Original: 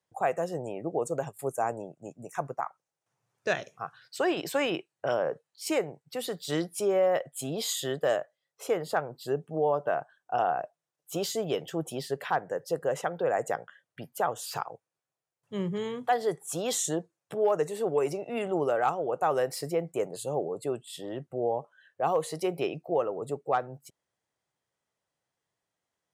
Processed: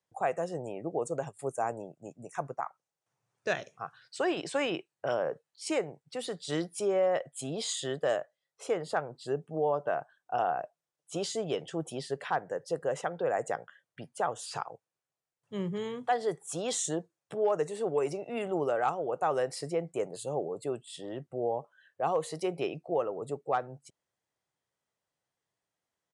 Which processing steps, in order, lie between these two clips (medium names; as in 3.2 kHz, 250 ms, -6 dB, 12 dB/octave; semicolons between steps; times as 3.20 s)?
resampled via 22.05 kHz; trim -2.5 dB